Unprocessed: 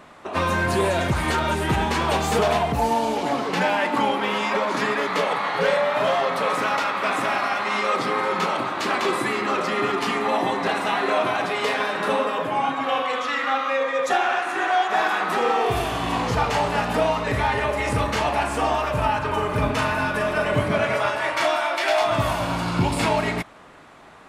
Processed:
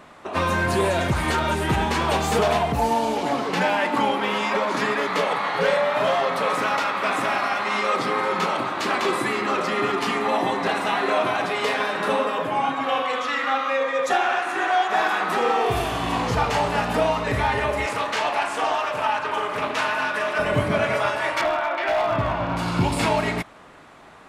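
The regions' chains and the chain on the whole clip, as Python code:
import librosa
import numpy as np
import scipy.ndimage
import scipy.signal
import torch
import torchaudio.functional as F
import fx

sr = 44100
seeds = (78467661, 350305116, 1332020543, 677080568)

y = fx.chain(x, sr, fx.weighting(curve='A'),
    fx.doppler_dist(depth_ms=0.21), at=(17.86, 20.39))
y = fx.chain(y, sr, fx.lowpass(hz=2300.0, slope=12),
    fx.clip_hard(threshold_db=-17.0), at=(21.41, 22.57))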